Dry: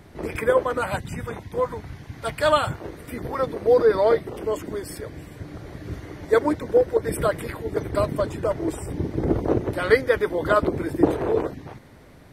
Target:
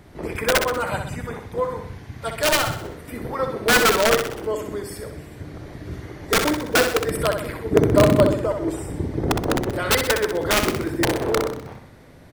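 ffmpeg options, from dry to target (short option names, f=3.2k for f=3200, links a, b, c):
-filter_complex "[0:a]aeval=exprs='(mod(3.76*val(0)+1,2)-1)/3.76':c=same,asettb=1/sr,asplit=3[a][b][c];[a]atrim=end=7.714[d];[b]atrim=start=7.71:end=8.34,asetpts=PTS-STARTPTS,afade=t=in:d=0.004:c=qsin,afade=t=out:st=0.626:d=0.004:c=qsin,equalizer=f=230:w=0.38:g=13[e];[c]atrim=start=8.336[f];[d][e]acrossfade=d=0.004:c1=hsin:c2=qsin[g];[g][f]acrossfade=d=0.004:c1=qsin:c2=hsin,aecho=1:1:63|126|189|252|315|378:0.473|0.237|0.118|0.0591|0.0296|0.0148"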